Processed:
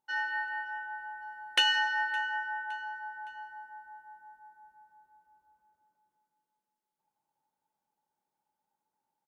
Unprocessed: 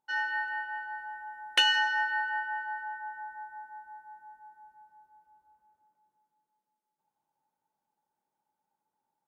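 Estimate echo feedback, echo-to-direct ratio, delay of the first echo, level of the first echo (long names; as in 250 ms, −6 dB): 42%, −20.0 dB, 564 ms, −21.0 dB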